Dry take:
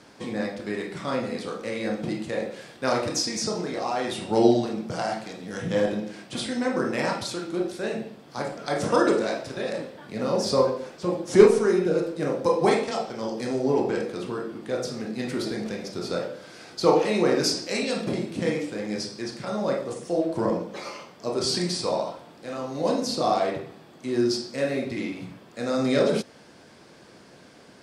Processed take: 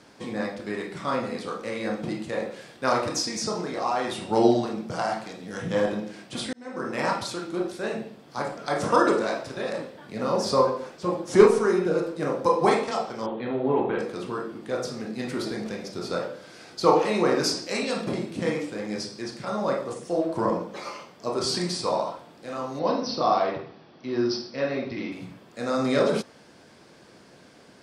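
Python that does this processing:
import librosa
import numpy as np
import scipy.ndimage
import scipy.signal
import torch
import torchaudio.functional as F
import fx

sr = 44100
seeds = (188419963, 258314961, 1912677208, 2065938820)

y = fx.steep_lowpass(x, sr, hz=3900.0, slope=96, at=(13.26, 13.99))
y = fx.cheby1_lowpass(y, sr, hz=5900.0, order=10, at=(22.79, 25.12))
y = fx.edit(y, sr, fx.fade_in_span(start_s=6.53, length_s=0.54), tone=tone)
y = fx.dynamic_eq(y, sr, hz=1100.0, q=1.6, threshold_db=-43.0, ratio=4.0, max_db=7)
y = y * librosa.db_to_amplitude(-1.5)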